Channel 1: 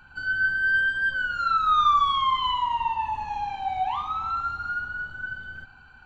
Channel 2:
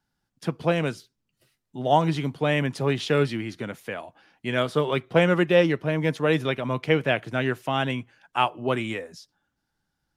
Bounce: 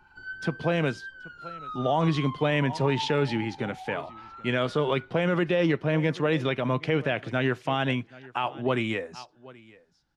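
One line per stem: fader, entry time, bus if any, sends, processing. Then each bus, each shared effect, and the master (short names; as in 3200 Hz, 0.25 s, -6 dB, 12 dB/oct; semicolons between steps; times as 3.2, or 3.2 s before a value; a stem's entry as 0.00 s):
-4.5 dB, 0.00 s, no send, no echo send, small resonant body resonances 370/880/2000 Hz, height 13 dB; harmonic tremolo 5.1 Hz, depth 50%, crossover 890 Hz; auto duck -11 dB, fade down 0.55 s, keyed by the second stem
+1.5 dB, 0.00 s, no send, echo send -23.5 dB, LPF 6000 Hz 12 dB/oct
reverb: off
echo: echo 0.779 s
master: limiter -14.5 dBFS, peak gain reduction 10 dB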